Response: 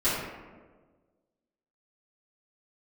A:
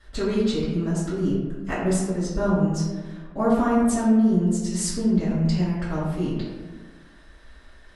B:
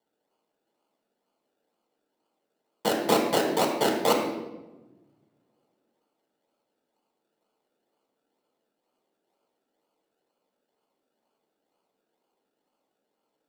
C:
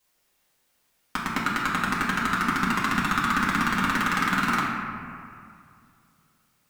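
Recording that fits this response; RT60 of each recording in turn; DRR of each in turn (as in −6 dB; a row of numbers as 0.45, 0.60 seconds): A; 1.4, 1.1, 2.3 seconds; −13.5, 1.0, −6.5 decibels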